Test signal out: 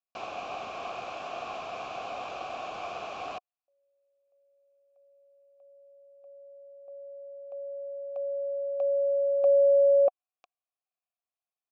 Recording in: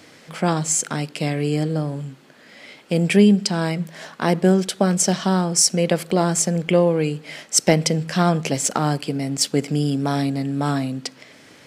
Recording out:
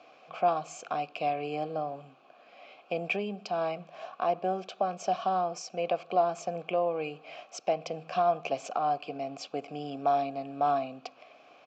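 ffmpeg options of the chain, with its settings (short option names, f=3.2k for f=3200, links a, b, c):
-filter_complex "[0:a]aresample=16000,aresample=44100,alimiter=limit=-10.5dB:level=0:latency=1:release=400,asplit=3[a][b][c];[a]bandpass=f=730:t=q:w=8,volume=0dB[d];[b]bandpass=f=1.09k:t=q:w=8,volume=-6dB[e];[c]bandpass=f=2.44k:t=q:w=8,volume=-9dB[f];[d][e][f]amix=inputs=3:normalize=0,volume=5.5dB"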